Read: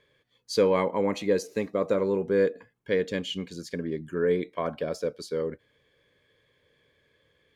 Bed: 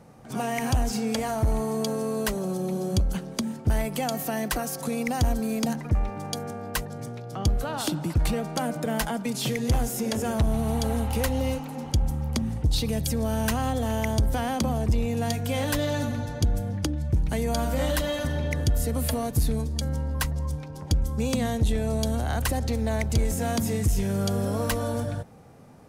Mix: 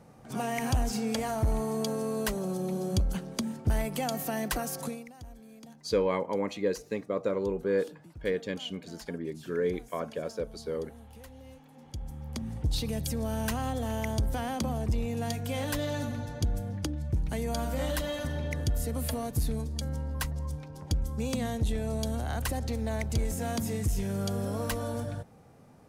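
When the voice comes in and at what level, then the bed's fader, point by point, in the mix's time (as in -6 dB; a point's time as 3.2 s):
5.35 s, -4.5 dB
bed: 4.85 s -3.5 dB
5.12 s -23.5 dB
11.44 s -23.5 dB
12.64 s -5.5 dB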